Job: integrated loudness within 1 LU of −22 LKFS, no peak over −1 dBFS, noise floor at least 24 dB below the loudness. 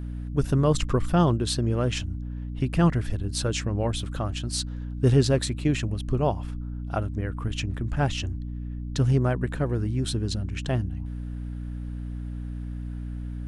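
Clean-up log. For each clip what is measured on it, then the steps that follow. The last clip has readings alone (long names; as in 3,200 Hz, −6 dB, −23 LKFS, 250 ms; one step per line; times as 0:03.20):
mains hum 60 Hz; hum harmonics up to 300 Hz; level of the hum −30 dBFS; integrated loudness −27.0 LKFS; sample peak −8.0 dBFS; target loudness −22.0 LKFS
→ mains-hum notches 60/120/180/240/300 Hz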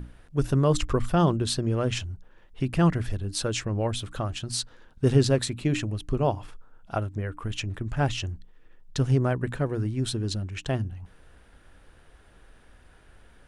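mains hum none found; integrated loudness −27.5 LKFS; sample peak −7.5 dBFS; target loudness −22.0 LKFS
→ level +5.5 dB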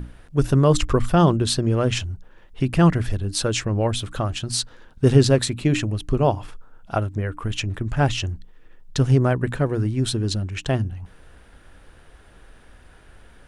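integrated loudness −22.0 LKFS; sample peak −2.0 dBFS; background noise floor −49 dBFS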